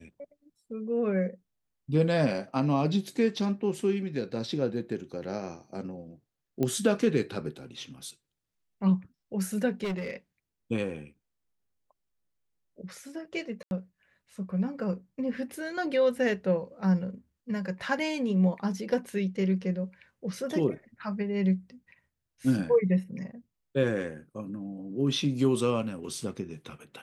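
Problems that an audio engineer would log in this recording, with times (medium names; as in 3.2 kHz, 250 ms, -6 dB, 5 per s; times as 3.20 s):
6.63 s: pop -16 dBFS
9.83–10.14 s: clipped -28.5 dBFS
13.63–13.71 s: dropout 81 ms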